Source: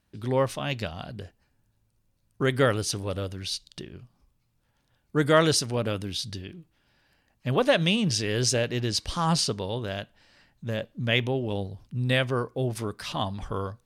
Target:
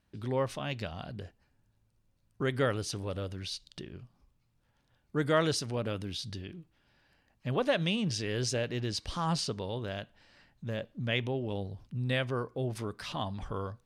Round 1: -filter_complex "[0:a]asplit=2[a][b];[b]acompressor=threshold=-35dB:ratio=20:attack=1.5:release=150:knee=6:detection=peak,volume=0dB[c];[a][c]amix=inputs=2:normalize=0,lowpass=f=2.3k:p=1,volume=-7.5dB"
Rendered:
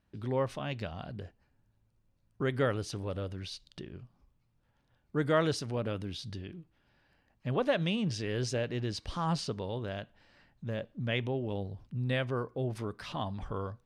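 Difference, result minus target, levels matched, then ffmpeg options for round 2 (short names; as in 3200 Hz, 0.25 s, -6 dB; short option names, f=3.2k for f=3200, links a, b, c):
4000 Hz band -3.0 dB
-filter_complex "[0:a]asplit=2[a][b];[b]acompressor=threshold=-35dB:ratio=20:attack=1.5:release=150:knee=6:detection=peak,volume=0dB[c];[a][c]amix=inputs=2:normalize=0,lowpass=f=5.6k:p=1,volume=-7.5dB"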